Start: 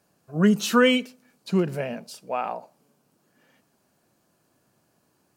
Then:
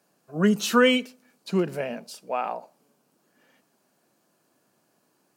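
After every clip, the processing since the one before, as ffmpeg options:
ffmpeg -i in.wav -af "highpass=190" out.wav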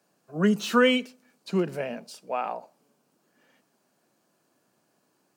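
ffmpeg -i in.wav -filter_complex "[0:a]equalizer=frequency=12000:width_type=o:width=0.34:gain=-5.5,acrossover=split=160|4000[link_01][link_02][link_03];[link_03]asoftclip=type=tanh:threshold=-35.5dB[link_04];[link_01][link_02][link_04]amix=inputs=3:normalize=0,volume=-1.5dB" out.wav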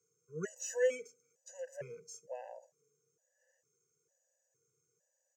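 ffmpeg -i in.wav -af "firequalizer=gain_entry='entry(140,0);entry(230,-28);entry(460,5);entry(680,-13);entry(990,-18);entry(1700,-5);entry(3700,-24);entry(6400,13);entry(9800,-12);entry(14000,-8)':delay=0.05:min_phase=1,afftfilt=real='re*gt(sin(2*PI*1.1*pts/sr)*(1-2*mod(floor(b*sr/1024/510),2)),0)':imag='im*gt(sin(2*PI*1.1*pts/sr)*(1-2*mod(floor(b*sr/1024/510),2)),0)':win_size=1024:overlap=0.75,volume=-5dB" out.wav

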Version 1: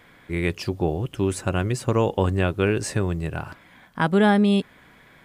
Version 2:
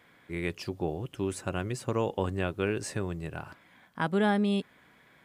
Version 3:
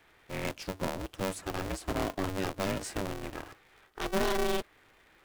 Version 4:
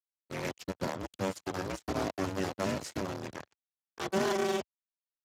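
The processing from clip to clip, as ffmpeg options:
ffmpeg -i in.wav -af "highpass=frequency=110:poles=1,volume=-7.5dB" out.wav
ffmpeg -i in.wav -filter_complex "[0:a]acrossover=split=340[link_01][link_02];[link_02]aeval=exprs='0.0531*(abs(mod(val(0)/0.0531+3,4)-2)-1)':channel_layout=same[link_03];[link_01][link_03]amix=inputs=2:normalize=0,aeval=exprs='val(0)*sgn(sin(2*PI*190*n/s))':channel_layout=same,volume=-2dB" out.wav
ffmpeg -i in.wav -af "acrusher=bits=5:mix=0:aa=0.5" -ar 32000 -c:a libspeex -b:a 15k out.spx

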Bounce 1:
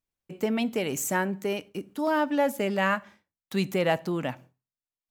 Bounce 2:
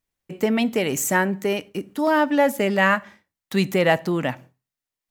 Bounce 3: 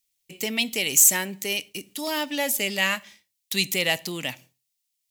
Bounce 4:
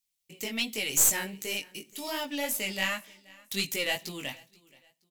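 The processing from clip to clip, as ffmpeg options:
ffmpeg -i in.wav -af "equalizer=frequency=1900:width=6.9:gain=5,volume=6dB" out.wav
ffmpeg -i in.wav -af "aexciter=amount=9.2:drive=3.1:freq=2200,volume=-10.5dB" out.wav
ffmpeg -i in.wav -af "flanger=delay=18:depth=3.6:speed=2.7,aeval=exprs='(tanh(2.82*val(0)+0.6)-tanh(0.6))/2.82':channel_layout=same,aecho=1:1:477|954:0.0631|0.0208" out.wav

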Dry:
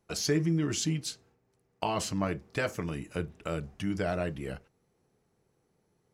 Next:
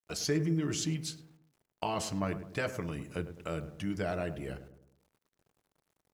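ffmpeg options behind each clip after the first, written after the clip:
ffmpeg -i in.wav -filter_complex "[0:a]acrusher=bits=10:mix=0:aa=0.000001,asplit=2[link_01][link_02];[link_02]adelay=104,lowpass=frequency=1100:poles=1,volume=-10.5dB,asplit=2[link_03][link_04];[link_04]adelay=104,lowpass=frequency=1100:poles=1,volume=0.49,asplit=2[link_05][link_06];[link_06]adelay=104,lowpass=frequency=1100:poles=1,volume=0.49,asplit=2[link_07][link_08];[link_08]adelay=104,lowpass=frequency=1100:poles=1,volume=0.49,asplit=2[link_09][link_10];[link_10]adelay=104,lowpass=frequency=1100:poles=1,volume=0.49[link_11];[link_03][link_05][link_07][link_09][link_11]amix=inputs=5:normalize=0[link_12];[link_01][link_12]amix=inputs=2:normalize=0,volume=-3dB" out.wav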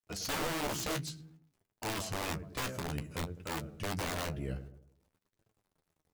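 ffmpeg -i in.wav -af "lowshelf=frequency=180:gain=8,aeval=exprs='(mod(20*val(0)+1,2)-1)/20':channel_layout=same,flanger=delay=8.8:depth=6.6:regen=34:speed=0.55:shape=triangular" out.wav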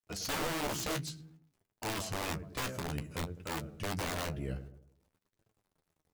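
ffmpeg -i in.wav -af anull out.wav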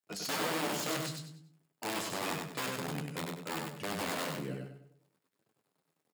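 ffmpeg -i in.wav -filter_complex "[0:a]highpass=frequency=150:width=0.5412,highpass=frequency=150:width=1.3066,bandreject=frequency=6000:width=13,asplit=2[link_01][link_02];[link_02]aecho=0:1:97|194|291|388:0.631|0.202|0.0646|0.0207[link_03];[link_01][link_03]amix=inputs=2:normalize=0" out.wav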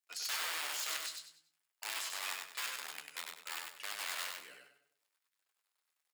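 ffmpeg -i in.wav -af "highpass=1500" out.wav

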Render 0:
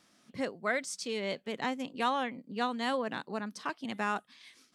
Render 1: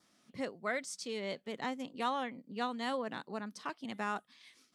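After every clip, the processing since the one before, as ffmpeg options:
ffmpeg -i in.wav -af "bandreject=frequency=1600:width=25,adynamicequalizer=threshold=0.00141:dfrequency=2600:dqfactor=4.5:tfrequency=2600:tqfactor=4.5:attack=5:release=100:ratio=0.375:range=2:mode=cutabove:tftype=bell,volume=-4dB" out.wav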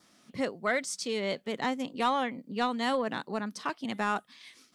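ffmpeg -i in.wav -af "asoftclip=type=tanh:threshold=-22.5dB,volume=7.5dB" out.wav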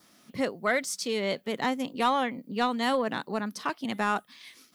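ffmpeg -i in.wav -af "aexciter=amount=3.6:drive=3.2:freq=11000,volume=2.5dB" out.wav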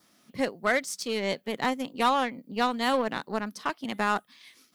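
ffmpeg -i in.wav -af "aeval=exprs='0.2*(cos(1*acos(clip(val(0)/0.2,-1,1)))-cos(1*PI/2))+0.0126*(cos(7*acos(clip(val(0)/0.2,-1,1)))-cos(7*PI/2))':channel_layout=same,volume=1.5dB" out.wav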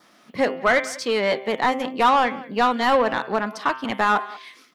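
ffmpeg -i in.wav -filter_complex "[0:a]bandreject=frequency=130.3:width_type=h:width=4,bandreject=frequency=260.6:width_type=h:width=4,bandreject=frequency=390.9:width_type=h:width=4,bandreject=frequency=521.2:width_type=h:width=4,bandreject=frequency=651.5:width_type=h:width=4,bandreject=frequency=781.8:width_type=h:width=4,bandreject=frequency=912.1:width_type=h:width=4,bandreject=frequency=1042.4:width_type=h:width=4,bandreject=frequency=1172.7:width_type=h:width=4,bandreject=frequency=1303:width_type=h:width=4,bandreject=frequency=1433.3:width_type=h:width=4,bandreject=frequency=1563.6:width_type=h:width=4,bandreject=frequency=1693.9:width_type=h:width=4,bandreject=frequency=1824.2:width_type=h:width=4,bandreject=frequency=1954.5:width_type=h:width=4,bandreject=frequency=2084.8:width_type=h:width=4,bandreject=frequency=2215.1:width_type=h:width=4,bandreject=frequency=2345.4:width_type=h:width=4,bandreject=frequency=2475.7:width_type=h:width=4,bandreject=frequency=2606:width_type=h:width=4,bandreject=frequency=2736.3:width_type=h:width=4,bandreject=frequency=2866.6:width_type=h:width=4,bandreject=frequency=2996.9:width_type=h:width=4,bandreject=frequency=3127.2:width_type=h:width=4,bandreject=frequency=3257.5:width_type=h:width=4,bandreject=frequency=3387.8:width_type=h:width=4,bandreject=frequency=3518.1:width_type=h:width=4,asplit=2[link_01][link_02];[link_02]adelay=190,highpass=300,lowpass=3400,asoftclip=type=hard:threshold=-21.5dB,volume=-21dB[link_03];[link_01][link_03]amix=inputs=2:normalize=0,asplit=2[link_04][link_05];[link_05]highpass=frequency=720:poles=1,volume=15dB,asoftclip=type=tanh:threshold=-12.5dB[link_06];[link_04][link_06]amix=inputs=2:normalize=0,lowpass=frequency=1500:poles=1,volume=-6dB,volume=5.5dB" out.wav

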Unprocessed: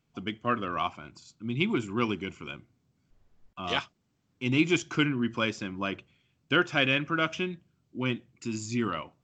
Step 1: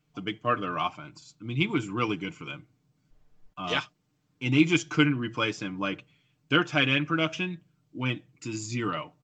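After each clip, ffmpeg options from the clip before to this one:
ffmpeg -i in.wav -af "aecho=1:1:6.6:0.65" out.wav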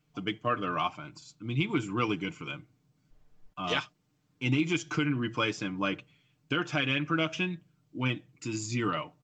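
ffmpeg -i in.wav -af "alimiter=limit=-16.5dB:level=0:latency=1:release=153" out.wav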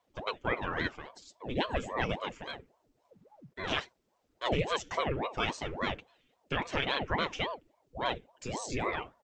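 ffmpeg -i in.wav -af "aeval=exprs='val(0)*sin(2*PI*490*n/s+490*0.75/3.6*sin(2*PI*3.6*n/s))':channel_layout=same" out.wav

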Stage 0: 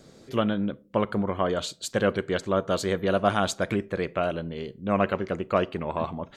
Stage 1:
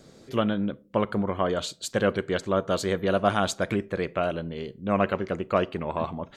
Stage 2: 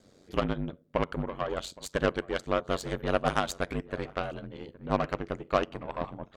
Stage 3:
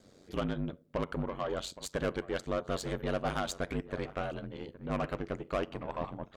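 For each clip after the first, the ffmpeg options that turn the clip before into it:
ffmpeg -i in.wav -af anull out.wav
ffmpeg -i in.wav -filter_complex "[0:a]aeval=exprs='0.473*(cos(1*acos(clip(val(0)/0.473,-1,1)))-cos(1*PI/2))+0.0299*(cos(7*acos(clip(val(0)/0.473,-1,1)))-cos(7*PI/2))+0.0266*(cos(8*acos(clip(val(0)/0.473,-1,1)))-cos(8*PI/2))':channel_layout=same,aeval=exprs='val(0)*sin(2*PI*46*n/s)':channel_layout=same,asplit=2[link_01][link_02];[link_02]adelay=816.3,volume=-21dB,highshelf=frequency=4000:gain=-18.4[link_03];[link_01][link_03]amix=inputs=2:normalize=0" out.wav
ffmpeg -i in.wav -af "asoftclip=type=tanh:threshold=-24.5dB" out.wav

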